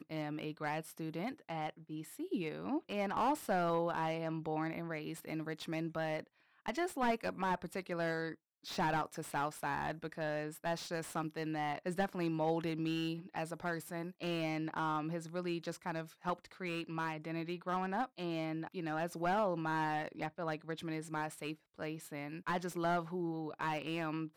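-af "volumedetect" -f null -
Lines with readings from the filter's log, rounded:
mean_volume: -38.4 dB
max_volume: -20.1 dB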